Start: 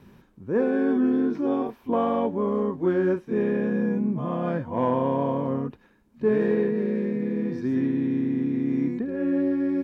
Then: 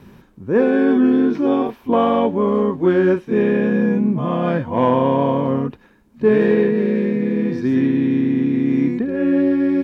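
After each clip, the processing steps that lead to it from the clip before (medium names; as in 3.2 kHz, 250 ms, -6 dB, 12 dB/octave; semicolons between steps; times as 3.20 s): dynamic bell 3 kHz, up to +6 dB, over -51 dBFS, Q 1.2; trim +7.5 dB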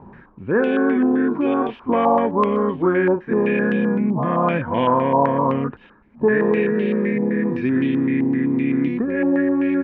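compression 2:1, threshold -18 dBFS, peak gain reduction 5 dB; step-sequenced low-pass 7.8 Hz 880–3000 Hz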